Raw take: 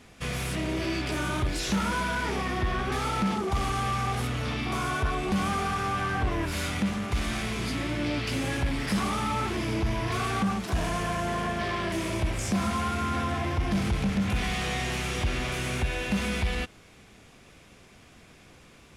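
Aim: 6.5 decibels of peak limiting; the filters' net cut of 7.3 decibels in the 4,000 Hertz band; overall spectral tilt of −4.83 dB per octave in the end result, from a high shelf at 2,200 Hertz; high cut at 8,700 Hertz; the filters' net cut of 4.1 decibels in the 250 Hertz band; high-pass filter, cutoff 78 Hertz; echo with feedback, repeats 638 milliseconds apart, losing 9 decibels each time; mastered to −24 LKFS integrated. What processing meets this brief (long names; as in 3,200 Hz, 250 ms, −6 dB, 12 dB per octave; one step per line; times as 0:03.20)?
high-pass filter 78 Hz
low-pass filter 8,700 Hz
parametric band 250 Hz −5.5 dB
high-shelf EQ 2,200 Hz −6 dB
parametric band 4,000 Hz −4 dB
brickwall limiter −25.5 dBFS
repeating echo 638 ms, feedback 35%, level −9 dB
level +9.5 dB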